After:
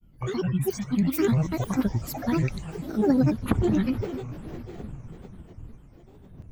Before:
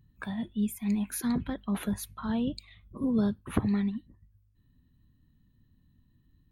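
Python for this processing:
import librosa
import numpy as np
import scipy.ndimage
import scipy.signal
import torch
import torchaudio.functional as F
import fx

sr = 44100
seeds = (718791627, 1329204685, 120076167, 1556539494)

y = fx.dmg_wind(x, sr, seeds[0], corner_hz=110.0, level_db=-48.0)
y = fx.echo_diffused(y, sr, ms=460, feedback_pct=58, wet_db=-13)
y = fx.granulator(y, sr, seeds[1], grain_ms=100.0, per_s=20.0, spray_ms=100.0, spread_st=12)
y = F.gain(torch.from_numpy(y), 6.5).numpy()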